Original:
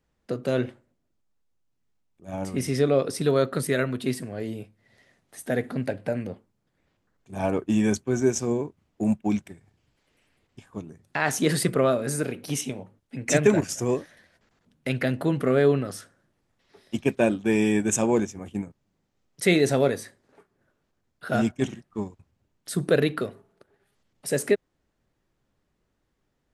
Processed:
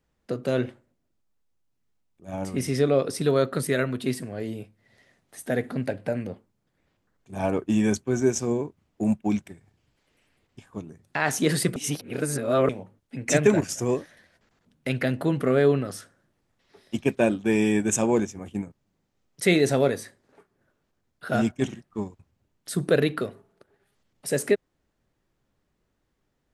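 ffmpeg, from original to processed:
-filter_complex "[0:a]asplit=3[s0][s1][s2];[s0]atrim=end=11.762[s3];[s1]atrim=start=11.758:end=12.692,asetpts=PTS-STARTPTS,areverse[s4];[s2]atrim=start=12.688[s5];[s3][s4]acrossfade=d=0.004:c1=hsin:c2=hsin[s6];[s6][s5]acrossfade=d=0.004:c1=hsin:c2=hsin"

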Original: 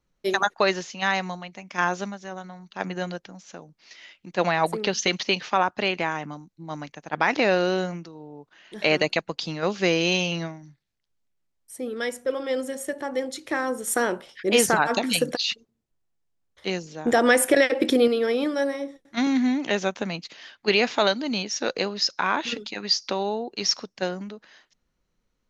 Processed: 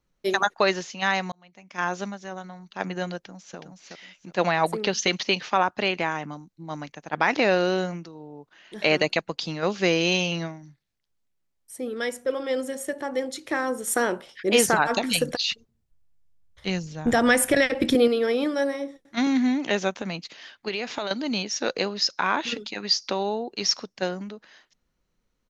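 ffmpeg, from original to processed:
-filter_complex "[0:a]asplit=2[s0][s1];[s1]afade=t=in:st=3.16:d=0.01,afade=t=out:st=3.58:d=0.01,aecho=0:1:370|740|1110:0.630957|0.157739|0.0394348[s2];[s0][s2]amix=inputs=2:normalize=0,asettb=1/sr,asplit=3[s3][s4][s5];[s3]atrim=end=14.604[s6];[s4]atrim=start=14.6:end=17.95,asetpts=PTS-STARTPTS,afade=t=in:d=0.004:c=qsin,afade=t=out:st=3.346:d=0.004:c=qsin,asubboost=boost=10.5:cutoff=130[s7];[s5]atrim=start=17.946[s8];[s6][s7]acrossfade=d=0.004:c1=hsin:c2=qsin[s9];[s9][s8]acrossfade=d=0.004:c1=qsin:c2=hsin,asettb=1/sr,asplit=3[s10][s11][s12];[s10]atrim=end=19.944[s13];[s11]atrim=start=19.94:end=21.11,asetpts=PTS-STARTPTS,afade=t=in:d=0.004:c=qsin,afade=t=out:st=1.166:d=0.004:c=qsin,acompressor=threshold=0.0562:ratio=6:attack=3.2:release=140:knee=1:detection=peak[s14];[s12]atrim=start=21.106[s15];[s13][s14]acrossfade=d=0.004:c1=hsin:c2=qsin[s16];[s16][s15]acrossfade=d=0.004:c1=qsin:c2=hsin,asplit=2[s17][s18];[s17]atrim=end=1.32,asetpts=PTS-STARTPTS,afade=t=out:st=1.316:d=0.004:c=hsin[s19];[s18]atrim=start=1.32,asetpts=PTS-STARTPTS,afade=t=in:d=0.77[s20];[s19][s20]concat=n=2:v=0:a=1"

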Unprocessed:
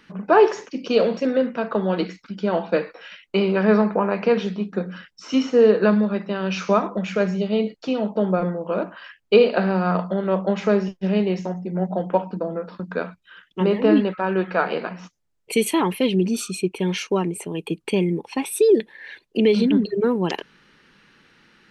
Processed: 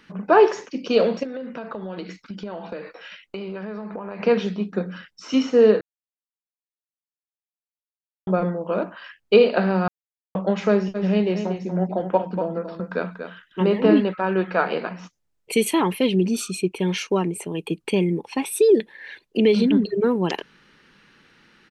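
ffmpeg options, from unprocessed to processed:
-filter_complex "[0:a]asettb=1/sr,asplit=3[s0][s1][s2];[s0]atrim=end=1.234[s3];[s1]atrim=start=1.23:end=4.2,asetpts=PTS-STARTPTS,afade=t=in:d=0.004:c=qsin,afade=t=out:st=2.966:d=0.004:c=qsin,acompressor=threshold=0.0398:ratio=12:attack=3.2:release=140:knee=1:detection=peak[s4];[s2]atrim=start=4.196[s5];[s3][s4]acrossfade=d=0.004:c1=hsin:c2=qsin[s6];[s6][s5]acrossfade=d=0.004:c1=qsin:c2=hsin,asplit=3[s7][s8][s9];[s7]afade=t=out:st=10.94:d=0.02[s10];[s8]aecho=1:1:238:0.376,afade=t=in:st=10.94:d=0.02,afade=t=out:st=14.01:d=0.02[s11];[s9]afade=t=in:st=14.01:d=0.02[s12];[s10][s11][s12]amix=inputs=3:normalize=0,asplit=5[s13][s14][s15][s16][s17];[s13]atrim=end=5.81,asetpts=PTS-STARTPTS,afade=t=out:st=5.806:d=0.004:c=hsin[s18];[s14]atrim=start=5.81:end=8.27,asetpts=PTS-STARTPTS,volume=0[s19];[s15]atrim=start=8.27:end=9.88,asetpts=PTS-STARTPTS,afade=t=in:d=0.004:c=hsin,afade=t=out:st=1.606:d=0.004:c=hsin[s20];[s16]atrim=start=9.88:end=10.35,asetpts=PTS-STARTPTS,volume=0[s21];[s17]atrim=start=10.35,asetpts=PTS-STARTPTS,afade=t=in:d=0.004:c=hsin[s22];[s18][s19][s20][s21][s22]concat=n=5:v=0:a=1"

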